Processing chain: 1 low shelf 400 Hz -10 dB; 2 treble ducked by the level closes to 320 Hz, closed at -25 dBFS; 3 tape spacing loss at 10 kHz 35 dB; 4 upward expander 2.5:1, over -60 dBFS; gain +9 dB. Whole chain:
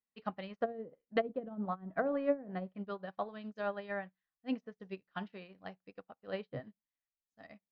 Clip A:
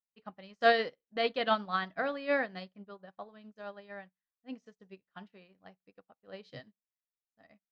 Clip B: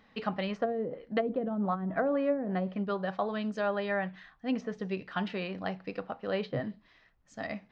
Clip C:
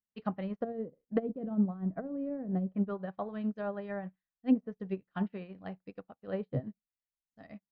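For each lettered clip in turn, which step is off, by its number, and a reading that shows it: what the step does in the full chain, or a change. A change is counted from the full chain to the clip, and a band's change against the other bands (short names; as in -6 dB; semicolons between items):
2, 250 Hz band -11.0 dB; 4, crest factor change -5.5 dB; 1, 125 Hz band +12.0 dB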